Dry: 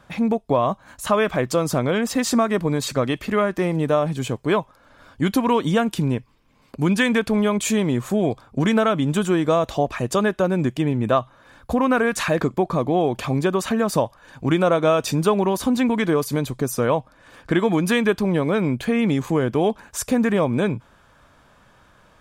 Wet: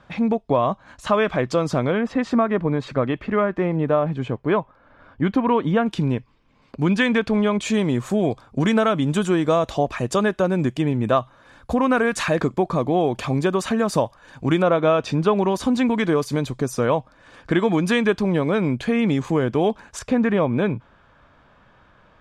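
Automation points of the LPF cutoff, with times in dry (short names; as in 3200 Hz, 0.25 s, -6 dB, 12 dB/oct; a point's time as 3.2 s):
4900 Hz
from 1.92 s 2200 Hz
from 5.86 s 4900 Hz
from 7.74 s 9200 Hz
from 14.62 s 3600 Hz
from 15.36 s 7200 Hz
from 19.99 s 3400 Hz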